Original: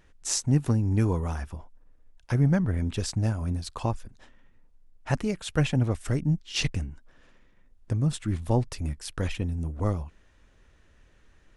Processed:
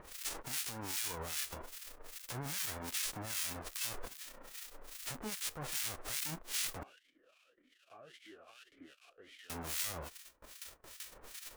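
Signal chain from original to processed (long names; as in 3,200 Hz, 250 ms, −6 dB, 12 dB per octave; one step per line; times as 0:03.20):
spectral envelope flattened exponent 0.1
noise gate with hold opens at −44 dBFS
upward compression, threshold −40 dBFS
brickwall limiter −27 dBFS, peak gain reduction 20.5 dB
two-band tremolo in antiphase 2.5 Hz, depth 100%, crossover 1,400 Hz
0:06.83–0:09.50: formant filter swept between two vowels a-i 1.8 Hz
level +2.5 dB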